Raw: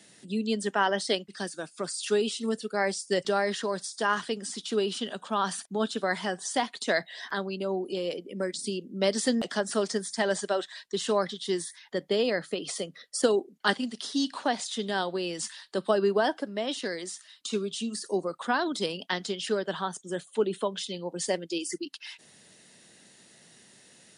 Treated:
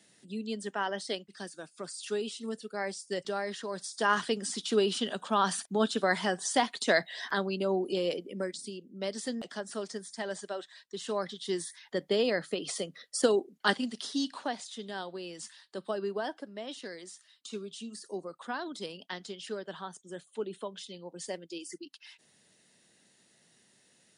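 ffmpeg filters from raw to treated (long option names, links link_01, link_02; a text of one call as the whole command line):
ffmpeg -i in.wav -af "volume=9dB,afade=type=in:start_time=3.67:duration=0.52:silence=0.375837,afade=type=out:start_time=8.08:duration=0.62:silence=0.298538,afade=type=in:start_time=10.94:duration=0.89:silence=0.398107,afade=type=out:start_time=13.93:duration=0.73:silence=0.398107" out.wav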